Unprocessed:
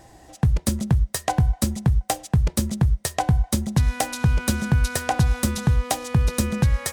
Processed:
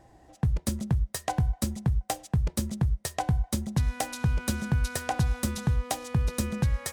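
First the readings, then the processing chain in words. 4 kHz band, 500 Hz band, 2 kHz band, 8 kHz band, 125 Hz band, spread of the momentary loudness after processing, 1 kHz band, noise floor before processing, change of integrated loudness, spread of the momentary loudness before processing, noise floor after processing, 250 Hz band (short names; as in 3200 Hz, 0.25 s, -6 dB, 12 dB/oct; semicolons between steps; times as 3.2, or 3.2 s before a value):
-7.0 dB, -6.5 dB, -7.0 dB, -7.0 dB, -6.5 dB, 2 LU, -6.5 dB, -52 dBFS, -6.5 dB, 2 LU, -59 dBFS, -6.5 dB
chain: mismatched tape noise reduction decoder only; gain -6.5 dB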